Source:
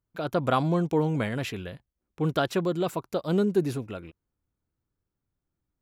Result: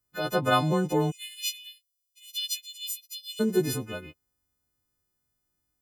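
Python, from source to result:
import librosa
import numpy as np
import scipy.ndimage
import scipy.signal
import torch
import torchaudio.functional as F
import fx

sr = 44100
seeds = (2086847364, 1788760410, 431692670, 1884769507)

y = fx.freq_snap(x, sr, grid_st=3)
y = fx.steep_highpass(y, sr, hz=2700.0, slope=48, at=(1.1, 3.39), fade=0.02)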